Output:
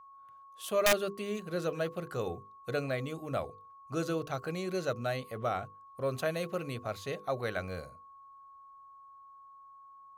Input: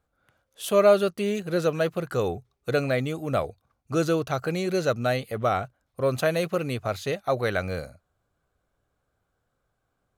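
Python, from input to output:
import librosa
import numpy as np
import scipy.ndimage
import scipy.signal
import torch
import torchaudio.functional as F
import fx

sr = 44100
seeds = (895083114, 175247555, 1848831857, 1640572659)

y = fx.hum_notches(x, sr, base_hz=50, count=10)
y = (np.mod(10.0 ** (9.5 / 20.0) * y + 1.0, 2.0) - 1.0) / 10.0 ** (9.5 / 20.0)
y = y + 10.0 ** (-43.0 / 20.0) * np.sin(2.0 * np.pi * 1100.0 * np.arange(len(y)) / sr)
y = y * librosa.db_to_amplitude(-8.5)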